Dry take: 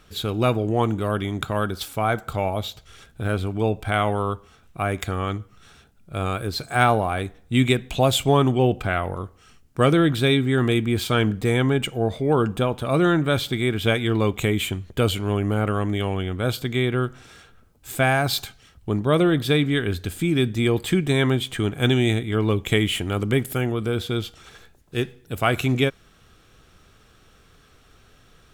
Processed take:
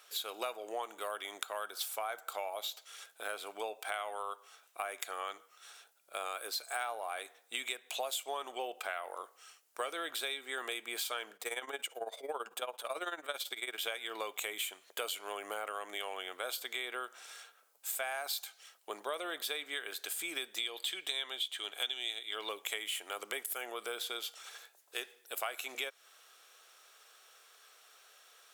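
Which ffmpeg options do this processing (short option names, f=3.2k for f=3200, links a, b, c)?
-filter_complex "[0:a]asettb=1/sr,asplit=3[a][b][c];[a]atrim=end=11.364[d];[b]atrim=start=11.36:end=13.78,asetpts=PTS-STARTPTS,afade=t=in:d=0.004:c=qsin,afade=t=out:st=2.416:d=0.004:c=qsin,tremolo=f=18:d=0.8[e];[c]atrim=start=13.776[f];[d][e]acrossfade=d=0.004:c1=hsin:c2=qsin[g];[g][f]acrossfade=d=0.004:c1=qsin:c2=hsin,asettb=1/sr,asplit=3[h][i][j];[h]atrim=end=20.584[k];[i]atrim=start=20.58:end=22.49,asetpts=PTS-STARTPTS,afade=t=in:d=0.004:c=qsin,afade=t=out:st=1.906:d=0.004:c=qsin,equalizer=f=3.5k:w=1.8:g=12.5[l];[j]atrim=start=22.486[m];[k][l]acrossfade=d=0.004:c1=hsin:c2=qsin[n];[n][m]acrossfade=d=0.004:c1=qsin:c2=hsin,highpass=f=550:w=0.5412,highpass=f=550:w=1.3066,highshelf=f=5.5k:g=10.5,acompressor=threshold=-30dB:ratio=6,volume=-5dB"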